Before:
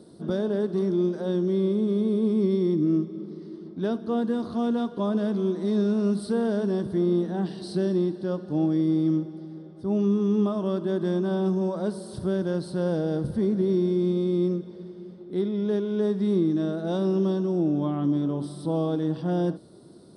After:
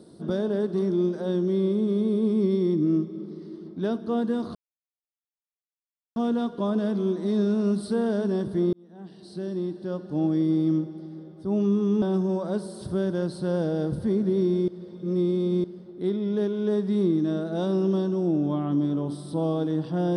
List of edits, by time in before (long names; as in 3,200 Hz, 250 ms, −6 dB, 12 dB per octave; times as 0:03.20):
0:04.55: splice in silence 1.61 s
0:07.12–0:08.74: fade in
0:10.41–0:11.34: remove
0:14.00–0:14.96: reverse